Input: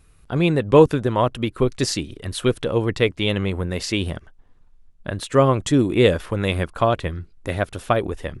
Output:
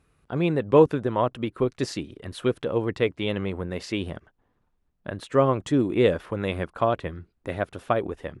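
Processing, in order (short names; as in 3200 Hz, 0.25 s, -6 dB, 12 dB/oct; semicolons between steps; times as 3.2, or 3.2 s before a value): HPF 160 Hz 6 dB/oct; high shelf 3200 Hz -11.5 dB; gain -3 dB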